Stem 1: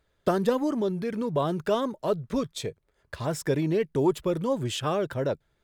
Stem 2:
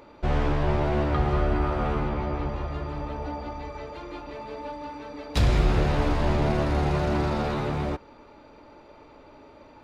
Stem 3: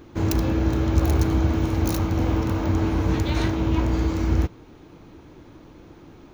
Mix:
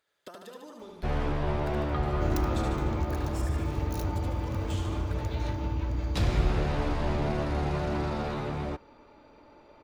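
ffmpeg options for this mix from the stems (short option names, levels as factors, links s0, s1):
-filter_complex "[0:a]highpass=f=1100:p=1,acompressor=threshold=0.00794:ratio=16,volume=0.841,asplit=2[s0][s1];[s1]volume=0.668[s2];[1:a]adelay=800,volume=0.562[s3];[2:a]asubboost=boost=2.5:cutoff=160,acompressor=threshold=0.112:ratio=6,adelay=2050,volume=0.398[s4];[s2]aecho=0:1:74|148|222|296|370|444|518|592|666|740:1|0.6|0.36|0.216|0.13|0.0778|0.0467|0.028|0.0168|0.0101[s5];[s0][s3][s4][s5]amix=inputs=4:normalize=0"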